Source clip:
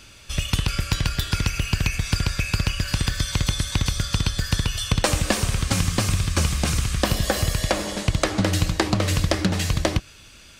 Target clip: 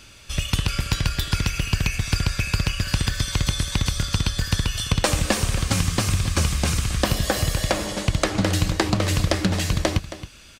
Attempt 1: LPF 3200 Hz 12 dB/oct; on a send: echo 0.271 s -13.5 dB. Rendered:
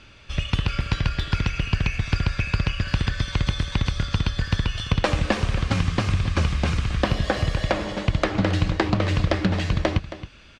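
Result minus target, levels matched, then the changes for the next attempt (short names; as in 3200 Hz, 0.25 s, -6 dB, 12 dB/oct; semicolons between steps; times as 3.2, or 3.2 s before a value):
4000 Hz band -3.5 dB
remove: LPF 3200 Hz 12 dB/oct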